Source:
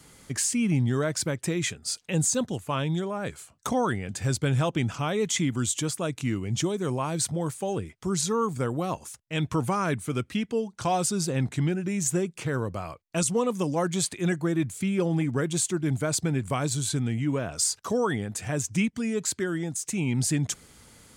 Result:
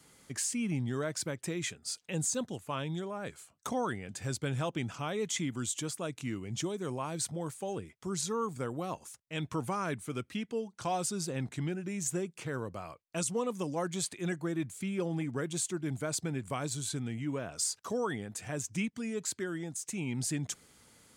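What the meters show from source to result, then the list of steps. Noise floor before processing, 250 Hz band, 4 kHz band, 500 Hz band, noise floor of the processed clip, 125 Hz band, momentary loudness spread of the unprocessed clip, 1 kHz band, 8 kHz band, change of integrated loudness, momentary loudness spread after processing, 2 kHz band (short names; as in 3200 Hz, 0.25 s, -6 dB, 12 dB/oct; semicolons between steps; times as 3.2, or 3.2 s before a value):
-58 dBFS, -8.5 dB, -7.0 dB, -7.5 dB, -67 dBFS, -10.0 dB, 6 LU, -7.0 dB, -7.0 dB, -8.0 dB, 6 LU, -7.0 dB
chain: low shelf 90 Hz -10 dB; gain -7 dB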